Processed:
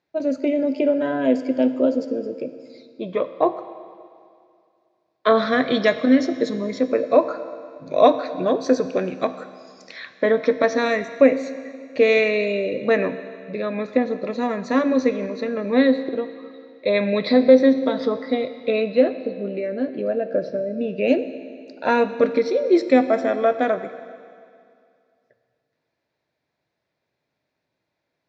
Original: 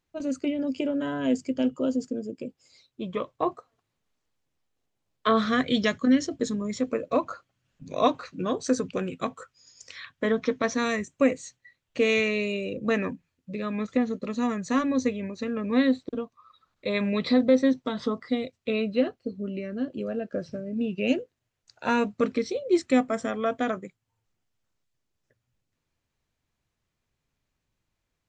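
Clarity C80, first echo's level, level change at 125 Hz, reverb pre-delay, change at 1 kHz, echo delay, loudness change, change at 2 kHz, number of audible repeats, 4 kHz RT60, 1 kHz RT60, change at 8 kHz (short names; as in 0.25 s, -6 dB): 12.5 dB, none, n/a, 15 ms, +6.0 dB, none, +6.5 dB, +5.5 dB, none, 2.3 s, 2.3 s, n/a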